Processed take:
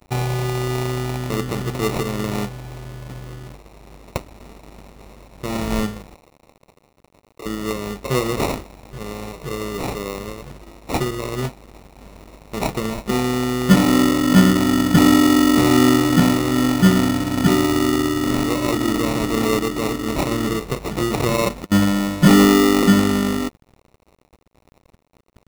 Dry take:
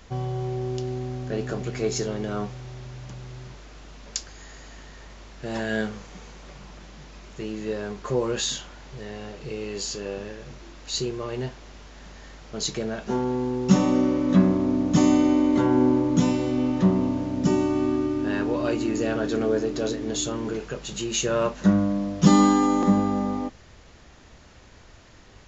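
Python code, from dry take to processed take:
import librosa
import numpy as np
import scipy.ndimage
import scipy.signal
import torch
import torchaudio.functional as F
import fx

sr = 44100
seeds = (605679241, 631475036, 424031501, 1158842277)

y = fx.rattle_buzz(x, sr, strikes_db=-28.0, level_db=-26.0)
y = fx.steep_highpass(y, sr, hz=440.0, slope=36, at=(6.14, 7.46))
y = fx.dynamic_eq(y, sr, hz=590.0, q=1.1, threshold_db=-35.0, ratio=4.0, max_db=-6)
y = fx.over_compress(y, sr, threshold_db=-27.0, ratio=-0.5, at=(20.29, 21.72))
y = fx.sample_hold(y, sr, seeds[0], rate_hz=1600.0, jitter_pct=0)
y = fx.cheby_harmonics(y, sr, harmonics=(5, 7), levels_db=(-15, -23), full_scale_db=-6.5)
y = np.sign(y) * np.maximum(np.abs(y) - 10.0 ** (-43.5 / 20.0), 0.0)
y = y * 10.0 ** (5.0 / 20.0)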